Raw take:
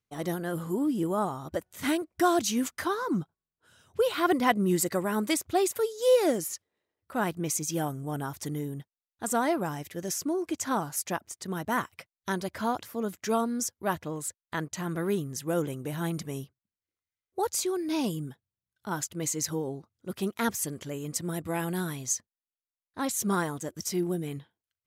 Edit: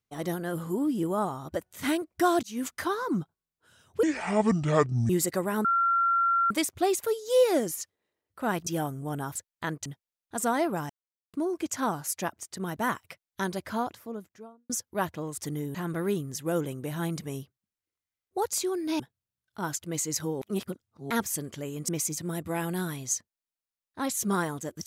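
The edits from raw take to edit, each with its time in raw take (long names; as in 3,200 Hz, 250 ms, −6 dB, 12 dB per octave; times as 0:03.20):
0:02.43–0:02.70: fade in
0:04.03–0:04.68: play speed 61%
0:05.23: insert tone 1,370 Hz −21 dBFS 0.86 s
0:07.39–0:07.68: move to 0:21.17
0:08.37–0:08.74: swap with 0:14.26–0:14.76
0:09.78–0:10.22: silence
0:12.47–0:13.58: fade out and dull
0:18.01–0:18.28: remove
0:19.70–0:20.39: reverse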